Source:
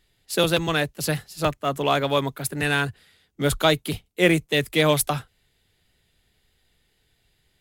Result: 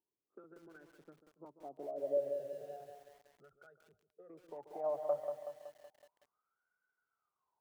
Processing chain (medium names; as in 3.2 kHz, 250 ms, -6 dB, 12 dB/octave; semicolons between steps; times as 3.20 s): local Wiener filter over 25 samples; bass shelf 92 Hz -6 dB; peak limiter -13 dBFS, peak gain reduction 8 dB; compression 8:1, threshold -29 dBFS, peak gain reduction 11 dB; wah-wah 0.33 Hz 560–1500 Hz, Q 21; 2.17–4.30 s: static phaser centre 1.5 kHz, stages 8; low-pass sweep 350 Hz -> 1.6 kHz, 4.11–5.26 s; tape echo 140 ms, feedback 45%, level -11.5 dB, low-pass 1.1 kHz; bit-crushed delay 187 ms, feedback 55%, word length 12-bit, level -7 dB; trim +10 dB